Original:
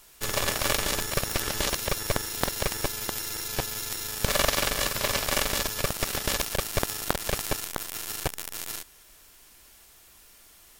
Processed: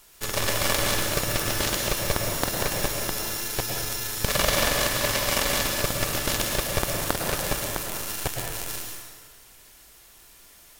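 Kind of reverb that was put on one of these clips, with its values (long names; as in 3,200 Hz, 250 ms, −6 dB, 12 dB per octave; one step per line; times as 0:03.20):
dense smooth reverb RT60 1.6 s, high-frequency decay 0.8×, pre-delay 95 ms, DRR 0.5 dB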